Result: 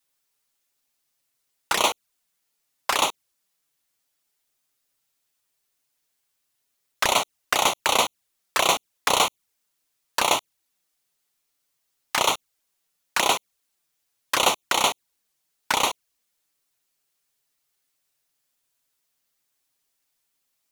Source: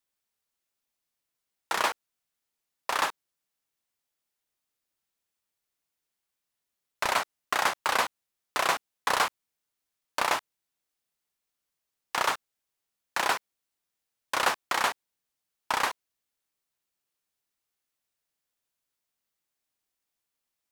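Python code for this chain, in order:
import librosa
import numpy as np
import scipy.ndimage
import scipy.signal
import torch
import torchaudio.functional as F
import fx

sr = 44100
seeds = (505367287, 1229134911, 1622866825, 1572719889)

y = fx.high_shelf(x, sr, hz=3100.0, db=5.0)
y = fx.env_flanger(y, sr, rest_ms=7.4, full_db=-24.5)
y = F.gain(torch.from_numpy(y), 8.5).numpy()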